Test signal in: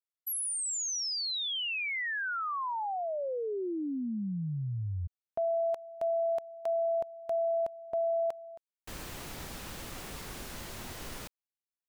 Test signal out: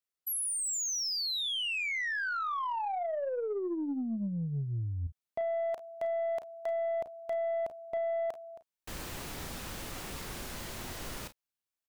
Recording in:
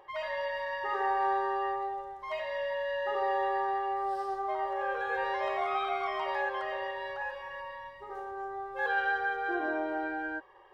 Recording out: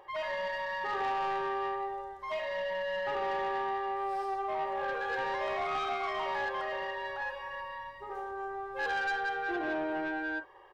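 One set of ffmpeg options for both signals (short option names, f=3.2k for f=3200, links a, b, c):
-af "aecho=1:1:35|49:0.251|0.126,aeval=exprs='(tanh(28.2*val(0)+0.05)-tanh(0.05))/28.2':c=same,volume=1.5dB"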